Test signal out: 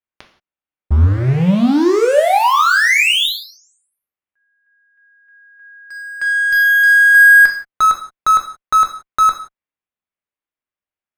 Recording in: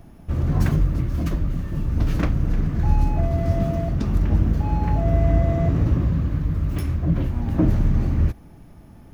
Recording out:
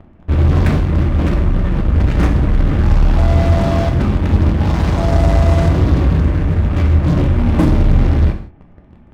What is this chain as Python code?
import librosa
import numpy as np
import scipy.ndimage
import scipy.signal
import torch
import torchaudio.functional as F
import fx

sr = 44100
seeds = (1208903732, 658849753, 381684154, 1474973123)

p1 = scipy.signal.sosfilt(scipy.signal.butter(4, 2800.0, 'lowpass', fs=sr, output='sos'), x)
p2 = fx.fuzz(p1, sr, gain_db=32.0, gate_db=-37.0)
p3 = p1 + (p2 * 10.0 ** (-3.0 / 20.0))
p4 = fx.rev_gated(p3, sr, seeds[0], gate_ms=200, shape='falling', drr_db=3.0)
y = p4 * 10.0 ** (-1.0 / 20.0)